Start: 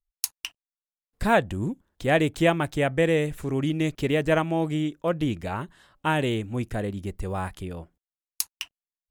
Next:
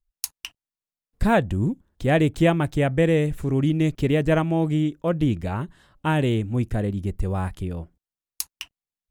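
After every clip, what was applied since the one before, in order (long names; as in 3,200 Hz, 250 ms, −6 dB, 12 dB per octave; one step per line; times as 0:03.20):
low-shelf EQ 320 Hz +9.5 dB
level −1.5 dB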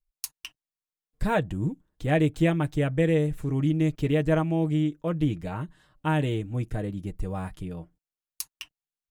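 comb filter 6.5 ms, depth 50%
level −6 dB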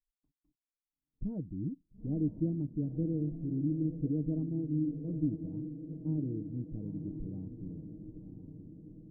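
transistor ladder low-pass 330 Hz, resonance 50%
feedback delay with all-pass diffusion 936 ms, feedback 57%, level −9 dB
level −2.5 dB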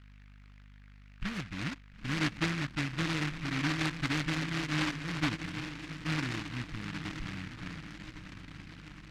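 mains hum 50 Hz, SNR 18 dB
short delay modulated by noise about 1,800 Hz, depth 0.44 ms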